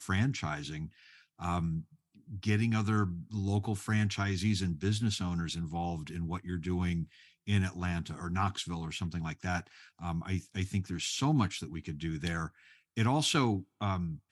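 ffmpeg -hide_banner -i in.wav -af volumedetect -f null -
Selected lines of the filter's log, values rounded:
mean_volume: -33.2 dB
max_volume: -15.1 dB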